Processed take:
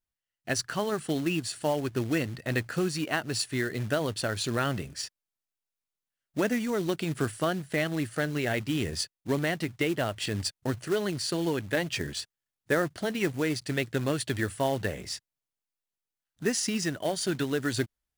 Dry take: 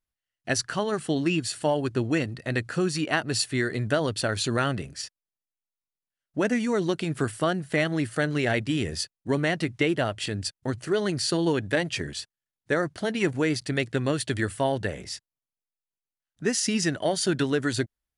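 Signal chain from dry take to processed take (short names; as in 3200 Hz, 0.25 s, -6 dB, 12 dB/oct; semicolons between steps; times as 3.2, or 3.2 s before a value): vocal rider within 3 dB 0.5 s; short-mantissa float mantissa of 2-bit; gain -3 dB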